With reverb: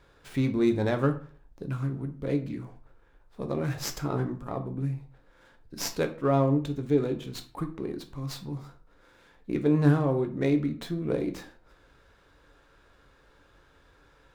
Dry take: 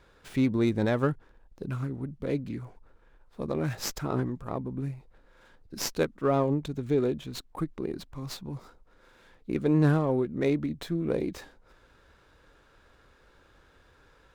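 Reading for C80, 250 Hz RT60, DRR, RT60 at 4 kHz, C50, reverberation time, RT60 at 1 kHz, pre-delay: 17.5 dB, 0.45 s, 6.0 dB, 0.30 s, 12.5 dB, 0.45 s, 0.45 s, 7 ms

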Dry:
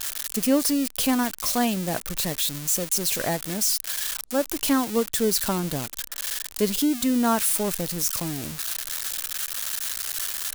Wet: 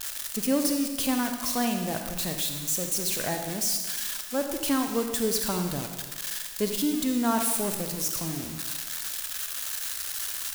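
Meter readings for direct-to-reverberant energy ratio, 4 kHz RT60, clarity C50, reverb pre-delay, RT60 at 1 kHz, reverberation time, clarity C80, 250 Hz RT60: 4.5 dB, 1.3 s, 5.5 dB, 36 ms, 1.3 s, 1.3 s, 7.0 dB, 1.3 s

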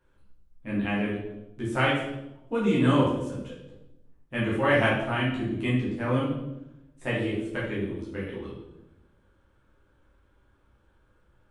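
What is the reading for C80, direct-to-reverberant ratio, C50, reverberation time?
6.0 dB, −7.5 dB, 2.0 dB, 0.90 s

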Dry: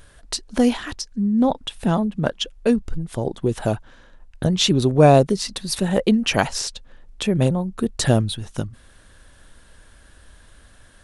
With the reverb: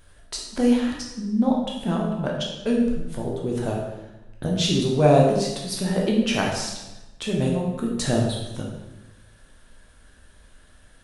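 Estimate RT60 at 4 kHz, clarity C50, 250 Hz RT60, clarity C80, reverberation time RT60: 0.85 s, 2.5 dB, 1.2 s, 5.0 dB, 1.0 s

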